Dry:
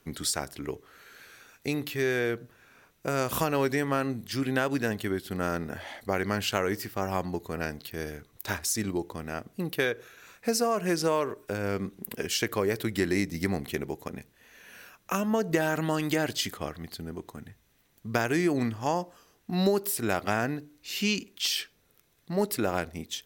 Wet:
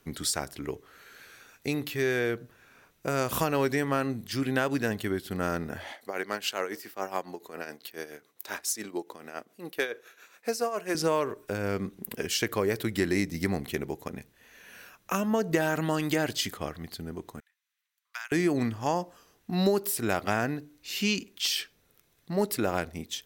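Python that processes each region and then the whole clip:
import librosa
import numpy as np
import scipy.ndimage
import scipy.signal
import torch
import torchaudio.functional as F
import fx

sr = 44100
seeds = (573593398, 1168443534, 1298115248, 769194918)

y = fx.chain(x, sr, fx.highpass(hz=330.0, slope=12),
    fx.tremolo(hz=7.2, depth=0.66),
    fx.clip_hard(threshold_db=-16.5), at=(5.92, 10.95))
y = fx.chain(y, sr, fx.bessel_highpass(hz=1900.0, order=6),
    fx.tilt_eq(slope=-2.5),
    fx.upward_expand(threshold_db=-51.0, expansion=1.5), at=(17.4, 18.32))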